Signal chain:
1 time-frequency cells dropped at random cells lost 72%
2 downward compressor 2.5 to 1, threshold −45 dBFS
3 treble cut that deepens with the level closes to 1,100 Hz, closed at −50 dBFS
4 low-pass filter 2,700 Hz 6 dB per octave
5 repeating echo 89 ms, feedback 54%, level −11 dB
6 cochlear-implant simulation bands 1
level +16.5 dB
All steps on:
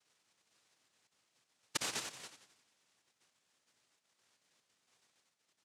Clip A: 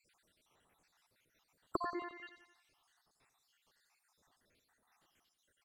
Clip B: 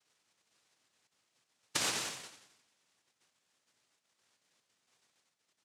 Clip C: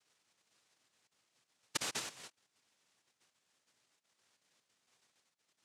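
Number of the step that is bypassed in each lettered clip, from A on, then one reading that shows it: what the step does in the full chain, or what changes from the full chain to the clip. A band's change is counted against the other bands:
6, 8 kHz band −28.5 dB
3, change in crest factor −3.0 dB
5, change in momentary loudness spread +2 LU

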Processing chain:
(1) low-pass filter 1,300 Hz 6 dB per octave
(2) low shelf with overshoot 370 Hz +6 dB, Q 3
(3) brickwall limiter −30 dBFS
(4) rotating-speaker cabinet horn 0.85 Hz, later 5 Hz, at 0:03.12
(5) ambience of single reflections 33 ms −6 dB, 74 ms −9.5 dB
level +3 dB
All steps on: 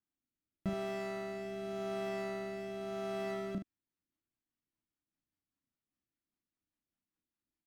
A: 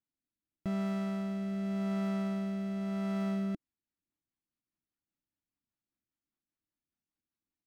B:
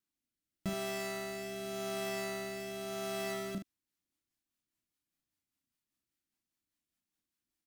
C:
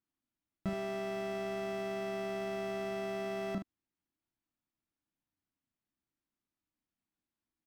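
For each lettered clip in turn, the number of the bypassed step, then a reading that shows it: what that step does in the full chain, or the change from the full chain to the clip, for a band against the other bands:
5, echo-to-direct ratio −4.5 dB to none audible
1, 8 kHz band +13.5 dB
4, change in integrated loudness +2.0 LU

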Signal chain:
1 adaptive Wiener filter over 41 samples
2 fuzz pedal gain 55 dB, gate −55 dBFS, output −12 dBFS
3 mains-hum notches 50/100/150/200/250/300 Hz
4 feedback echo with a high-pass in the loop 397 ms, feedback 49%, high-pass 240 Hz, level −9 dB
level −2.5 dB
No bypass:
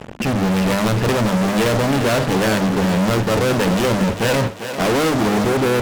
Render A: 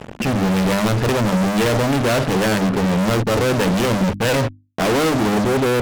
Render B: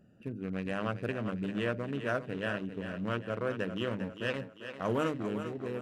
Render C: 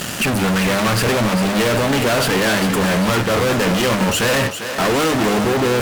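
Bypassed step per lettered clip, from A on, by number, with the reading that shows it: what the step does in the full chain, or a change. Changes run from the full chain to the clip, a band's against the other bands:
4, echo-to-direct ratio −8.0 dB to none audible
2, distortion level −2 dB
1, 125 Hz band −4.0 dB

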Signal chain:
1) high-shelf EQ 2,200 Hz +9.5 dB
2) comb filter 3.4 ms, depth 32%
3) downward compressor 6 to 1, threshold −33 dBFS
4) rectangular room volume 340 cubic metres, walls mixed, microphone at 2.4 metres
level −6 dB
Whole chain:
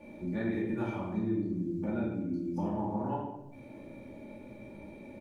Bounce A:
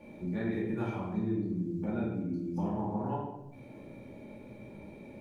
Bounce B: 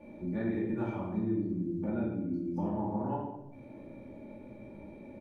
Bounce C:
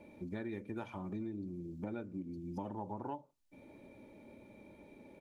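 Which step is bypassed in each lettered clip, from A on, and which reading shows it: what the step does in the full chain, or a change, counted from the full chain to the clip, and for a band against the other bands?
2, 125 Hz band +2.5 dB
1, 2 kHz band −3.5 dB
4, echo-to-direct ratio 6.5 dB to none audible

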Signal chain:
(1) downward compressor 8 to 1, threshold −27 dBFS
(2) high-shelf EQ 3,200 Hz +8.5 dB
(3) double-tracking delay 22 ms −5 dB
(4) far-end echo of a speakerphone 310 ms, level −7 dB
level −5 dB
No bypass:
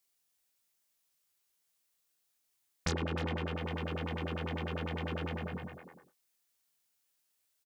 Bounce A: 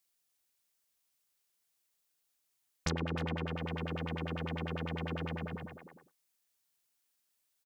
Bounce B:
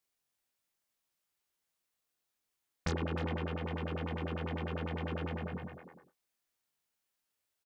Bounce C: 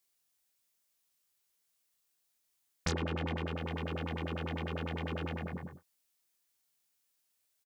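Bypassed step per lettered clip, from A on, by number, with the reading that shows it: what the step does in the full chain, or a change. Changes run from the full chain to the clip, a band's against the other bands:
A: 3, change in momentary loudness spread −2 LU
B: 2, 8 kHz band −6.5 dB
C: 4, change in momentary loudness spread −3 LU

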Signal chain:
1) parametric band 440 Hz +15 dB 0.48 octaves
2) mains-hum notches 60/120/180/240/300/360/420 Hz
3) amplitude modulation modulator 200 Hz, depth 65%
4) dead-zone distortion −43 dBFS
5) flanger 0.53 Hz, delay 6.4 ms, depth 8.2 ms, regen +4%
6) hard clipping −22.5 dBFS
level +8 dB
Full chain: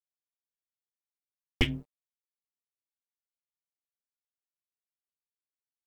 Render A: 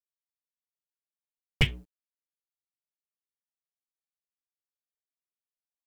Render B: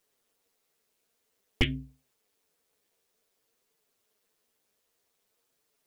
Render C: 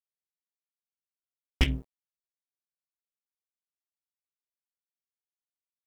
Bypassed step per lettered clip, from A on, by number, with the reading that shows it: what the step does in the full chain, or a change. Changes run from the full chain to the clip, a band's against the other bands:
3, change in momentary loudness spread +5 LU
4, distortion level −16 dB
5, change in crest factor −2.5 dB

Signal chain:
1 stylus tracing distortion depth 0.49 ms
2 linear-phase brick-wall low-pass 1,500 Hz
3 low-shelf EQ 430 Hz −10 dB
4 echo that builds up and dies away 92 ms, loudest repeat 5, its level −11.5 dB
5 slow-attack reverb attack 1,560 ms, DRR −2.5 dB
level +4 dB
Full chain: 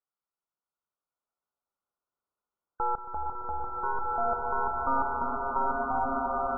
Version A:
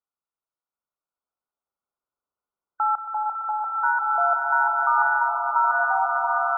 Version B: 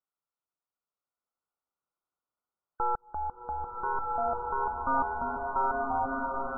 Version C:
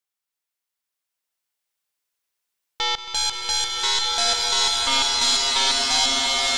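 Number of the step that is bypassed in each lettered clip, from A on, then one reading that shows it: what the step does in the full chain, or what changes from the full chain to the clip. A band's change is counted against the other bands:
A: 1, change in integrated loudness +8.5 LU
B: 4, change in integrated loudness −1.0 LU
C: 2, change in momentary loudness spread −1 LU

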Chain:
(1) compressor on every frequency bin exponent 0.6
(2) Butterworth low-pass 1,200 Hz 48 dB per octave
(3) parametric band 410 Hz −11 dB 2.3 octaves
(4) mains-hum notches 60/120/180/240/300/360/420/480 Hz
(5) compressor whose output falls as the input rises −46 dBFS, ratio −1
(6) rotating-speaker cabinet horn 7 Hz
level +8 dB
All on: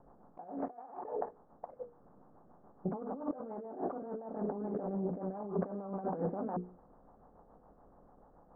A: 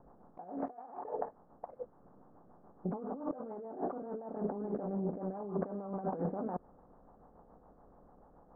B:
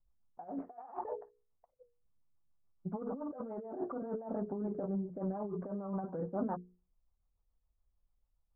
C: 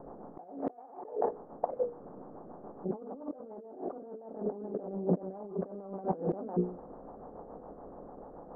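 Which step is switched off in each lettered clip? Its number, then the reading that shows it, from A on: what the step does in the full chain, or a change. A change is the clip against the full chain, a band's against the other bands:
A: 4, change in momentary loudness spread −3 LU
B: 1, 250 Hz band +2.0 dB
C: 3, change in crest factor +3.5 dB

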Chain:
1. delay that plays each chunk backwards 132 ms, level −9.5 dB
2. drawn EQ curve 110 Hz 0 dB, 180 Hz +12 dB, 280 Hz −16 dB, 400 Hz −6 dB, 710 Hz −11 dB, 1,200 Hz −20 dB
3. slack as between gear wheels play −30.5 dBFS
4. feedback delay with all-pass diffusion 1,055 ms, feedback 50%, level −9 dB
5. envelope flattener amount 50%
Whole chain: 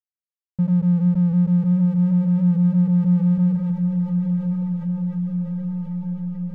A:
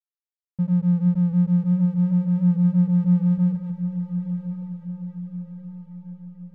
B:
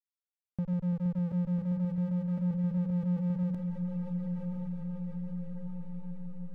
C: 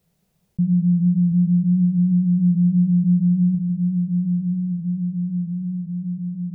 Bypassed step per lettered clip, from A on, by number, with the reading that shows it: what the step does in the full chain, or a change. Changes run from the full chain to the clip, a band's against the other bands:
5, change in crest factor +2.5 dB
2, change in momentary loudness spread +1 LU
3, distortion level −18 dB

